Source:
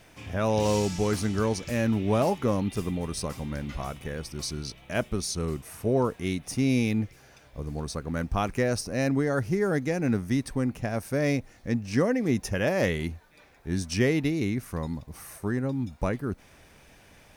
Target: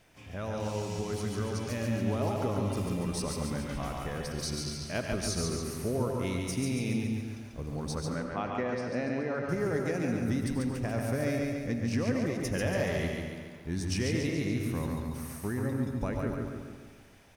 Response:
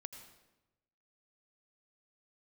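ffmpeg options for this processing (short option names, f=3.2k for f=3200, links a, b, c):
-filter_complex "[0:a]acompressor=threshold=-25dB:ratio=6,aecho=1:1:141|282|423|564|705|846|987:0.668|0.361|0.195|0.105|0.0568|0.0307|0.0166,dynaudnorm=f=170:g=21:m=5dB,asettb=1/sr,asplit=3[a][b][c];[a]atrim=end=8.144[d];[b]atrim=start=8.14:end=9.49,asetpts=PTS-STARTPTS,afade=t=in:d=0.004:c=qsin,afade=t=out:st=1.346:d=0.004:c=qsin,highpass=180,lowpass=2.9k[e];[c]atrim=start=9.486[f];[d][e]acrossfade=d=0.004:c1=hsin:c2=qsin[g];[g][f]acrossfade=d=0.004:c1=qsin:c2=hsin[h];[1:a]atrim=start_sample=2205[i];[h][i]afir=irnorm=-1:irlink=0,volume=-3dB"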